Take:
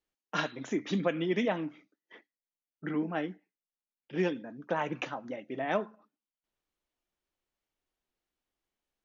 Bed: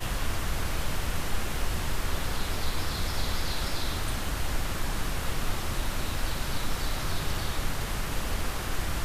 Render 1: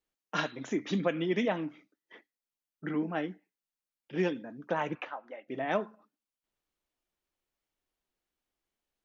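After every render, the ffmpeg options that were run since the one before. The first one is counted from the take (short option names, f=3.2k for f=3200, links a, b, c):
-filter_complex "[0:a]asplit=3[a][b][c];[a]afade=t=out:st=4.94:d=0.02[d];[b]highpass=620,lowpass=2.3k,afade=t=in:st=4.94:d=0.02,afade=t=out:st=5.47:d=0.02[e];[c]afade=t=in:st=5.47:d=0.02[f];[d][e][f]amix=inputs=3:normalize=0"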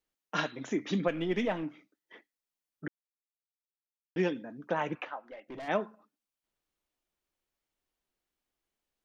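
-filter_complex "[0:a]asettb=1/sr,asplit=3[a][b][c];[a]atrim=end=1.084[d];[b]atrim=start=1.08:end=1.63,asetpts=PTS-STARTPTS,afade=t=in:d=0.004:c=qsin,afade=t=out:st=0.546:d=0.004:c=qsin,aeval=exprs='if(lt(val(0),0),0.708*val(0),val(0))':c=same[e];[c]atrim=start=1.626[f];[d][e]acrossfade=d=0.004:c1=hsin:c2=qsin[g];[g][f]acrossfade=d=0.004:c1=qsin:c2=hsin,asplit=3[h][i][j];[h]afade=t=out:st=5.21:d=0.02[k];[i]aeval=exprs='(tanh(89.1*val(0)+0.1)-tanh(0.1))/89.1':c=same,afade=t=in:st=5.21:d=0.02,afade=t=out:st=5.67:d=0.02[l];[j]afade=t=in:st=5.67:d=0.02[m];[k][l][m]amix=inputs=3:normalize=0,asplit=3[n][o][p];[n]atrim=end=2.88,asetpts=PTS-STARTPTS,afade=t=out:st=2.876:d=0.004:c=hsin[q];[o]atrim=start=2.88:end=4.16,asetpts=PTS-STARTPTS,volume=0[r];[p]atrim=start=4.16,asetpts=PTS-STARTPTS,afade=t=in:d=0.004:c=hsin[s];[q][r][s]concat=n=3:v=0:a=1"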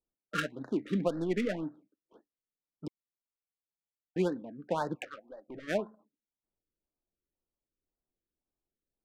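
-af "adynamicsmooth=sensitivity=6.5:basefreq=780,afftfilt=real='re*(1-between(b*sr/1024,780*pow(2700/780,0.5+0.5*sin(2*PI*1.9*pts/sr))/1.41,780*pow(2700/780,0.5+0.5*sin(2*PI*1.9*pts/sr))*1.41))':imag='im*(1-between(b*sr/1024,780*pow(2700/780,0.5+0.5*sin(2*PI*1.9*pts/sr))/1.41,780*pow(2700/780,0.5+0.5*sin(2*PI*1.9*pts/sr))*1.41))':win_size=1024:overlap=0.75"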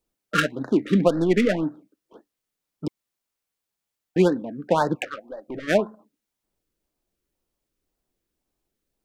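-af "volume=11.5dB"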